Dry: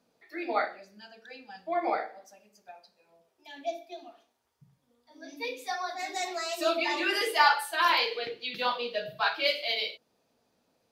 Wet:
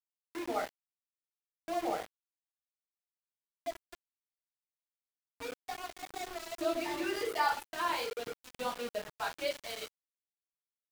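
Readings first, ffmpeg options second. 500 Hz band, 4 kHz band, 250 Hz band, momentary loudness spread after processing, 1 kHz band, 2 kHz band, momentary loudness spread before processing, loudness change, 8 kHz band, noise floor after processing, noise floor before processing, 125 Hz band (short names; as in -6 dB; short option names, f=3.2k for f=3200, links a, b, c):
-5.0 dB, -12.0 dB, -2.0 dB, 12 LU, -7.5 dB, -11.0 dB, 20 LU, -8.0 dB, -4.0 dB, under -85 dBFS, -74 dBFS, n/a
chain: -af "tiltshelf=f=760:g=7.5,aeval=exprs='val(0)*gte(abs(val(0)),0.0237)':c=same,volume=-6dB"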